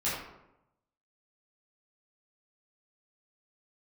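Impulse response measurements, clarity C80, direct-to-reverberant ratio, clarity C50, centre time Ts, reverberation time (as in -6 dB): 4.0 dB, -10.5 dB, 1.0 dB, 60 ms, 0.90 s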